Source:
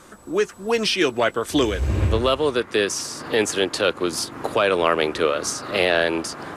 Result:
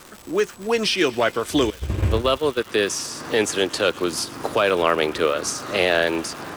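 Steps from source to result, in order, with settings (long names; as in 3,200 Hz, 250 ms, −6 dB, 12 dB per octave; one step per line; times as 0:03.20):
0:01.70–0:02.66: noise gate −20 dBFS, range −19 dB
surface crackle 350 per second −30 dBFS
on a send: delay with a high-pass on its return 118 ms, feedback 78%, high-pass 1,800 Hz, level −21 dB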